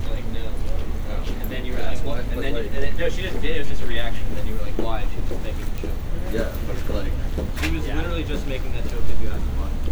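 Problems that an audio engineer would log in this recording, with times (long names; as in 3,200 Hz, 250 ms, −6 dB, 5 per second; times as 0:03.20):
0:05.78: click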